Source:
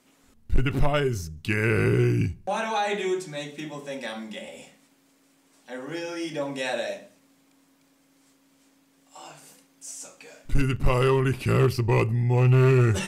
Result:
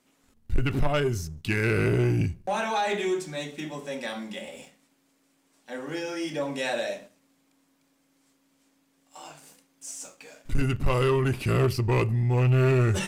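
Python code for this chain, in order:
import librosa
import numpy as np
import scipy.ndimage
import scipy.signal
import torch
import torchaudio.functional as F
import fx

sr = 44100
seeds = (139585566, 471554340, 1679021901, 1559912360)

y = fx.leveller(x, sr, passes=1)
y = y * librosa.db_to_amplitude(-3.5)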